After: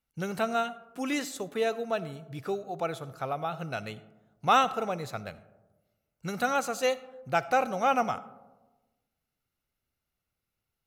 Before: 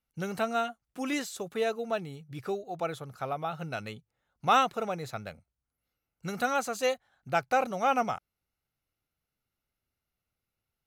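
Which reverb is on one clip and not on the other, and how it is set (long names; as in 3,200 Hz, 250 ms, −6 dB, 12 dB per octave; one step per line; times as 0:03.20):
comb and all-pass reverb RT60 1.2 s, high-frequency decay 0.3×, pre-delay 25 ms, DRR 16 dB
level +1 dB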